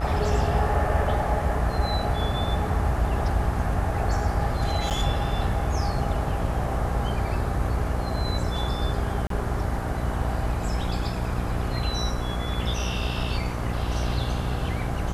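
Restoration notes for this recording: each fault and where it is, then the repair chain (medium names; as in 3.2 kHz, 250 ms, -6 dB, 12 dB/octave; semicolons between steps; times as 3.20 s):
buzz 60 Hz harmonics 24 -29 dBFS
4.90–4.91 s: dropout 8.1 ms
9.27–9.30 s: dropout 33 ms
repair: de-hum 60 Hz, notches 24; interpolate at 4.90 s, 8.1 ms; interpolate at 9.27 s, 33 ms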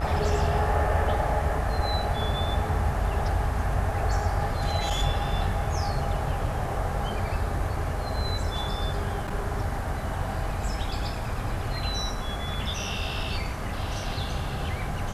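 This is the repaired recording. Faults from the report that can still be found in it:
nothing left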